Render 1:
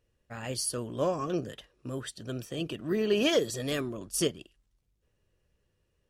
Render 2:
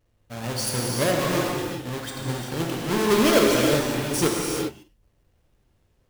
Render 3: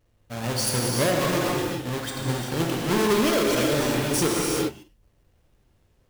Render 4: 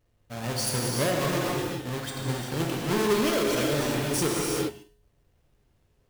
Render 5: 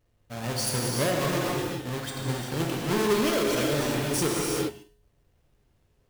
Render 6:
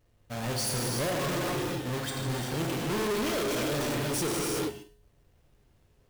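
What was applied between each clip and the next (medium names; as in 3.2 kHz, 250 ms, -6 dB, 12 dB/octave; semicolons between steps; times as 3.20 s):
square wave that keeps the level; gated-style reverb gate 430 ms flat, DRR -2 dB
peak limiter -15.5 dBFS, peak gain reduction 9 dB; trim +2 dB
feedback comb 140 Hz, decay 0.58 s, harmonics odd, mix 60%; trim +4 dB
no audible change
saturation -29.5 dBFS, distortion -9 dB; trim +2.5 dB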